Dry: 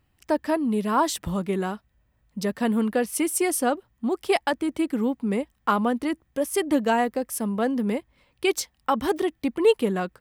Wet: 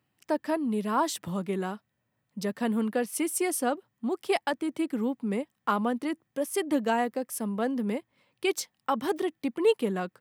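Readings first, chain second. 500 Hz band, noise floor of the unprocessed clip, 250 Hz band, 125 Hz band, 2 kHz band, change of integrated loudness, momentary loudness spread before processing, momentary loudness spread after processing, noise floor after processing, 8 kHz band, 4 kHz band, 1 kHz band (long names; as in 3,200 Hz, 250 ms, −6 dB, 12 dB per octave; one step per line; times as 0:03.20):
−4.5 dB, −69 dBFS, −4.5 dB, can't be measured, −4.5 dB, −4.5 dB, 6 LU, 6 LU, −79 dBFS, −4.5 dB, −4.5 dB, −4.5 dB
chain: high-pass filter 120 Hz 24 dB per octave
level −4.5 dB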